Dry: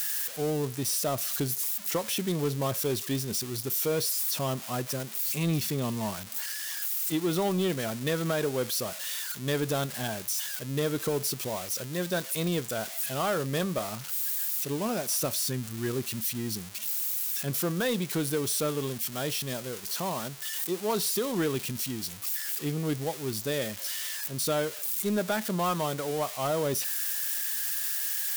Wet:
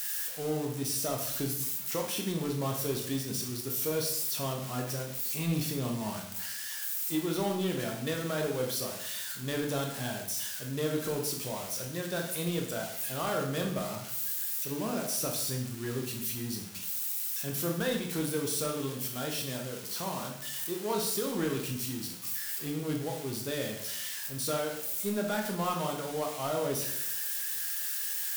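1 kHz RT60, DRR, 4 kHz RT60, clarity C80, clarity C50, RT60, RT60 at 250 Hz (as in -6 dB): 0.70 s, 1.0 dB, 0.60 s, 8.5 dB, 5.5 dB, 0.75 s, 0.85 s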